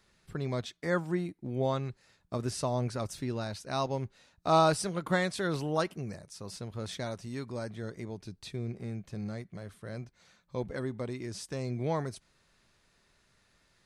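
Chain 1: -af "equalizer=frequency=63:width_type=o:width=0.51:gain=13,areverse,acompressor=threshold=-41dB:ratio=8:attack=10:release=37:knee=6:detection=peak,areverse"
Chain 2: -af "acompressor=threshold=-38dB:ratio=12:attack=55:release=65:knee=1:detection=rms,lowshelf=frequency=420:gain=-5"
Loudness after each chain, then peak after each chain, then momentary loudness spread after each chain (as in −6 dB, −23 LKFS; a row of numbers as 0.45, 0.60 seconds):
−43.5, −42.5 LKFS; −29.0, −23.0 dBFS; 6, 7 LU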